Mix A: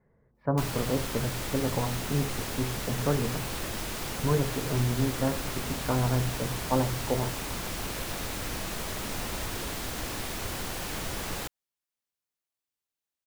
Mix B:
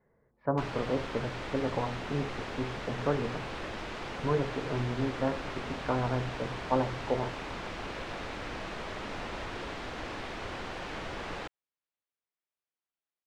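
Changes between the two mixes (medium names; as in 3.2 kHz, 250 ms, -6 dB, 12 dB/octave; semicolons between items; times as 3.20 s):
background: add distance through air 120 m; master: add tone controls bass -7 dB, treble -8 dB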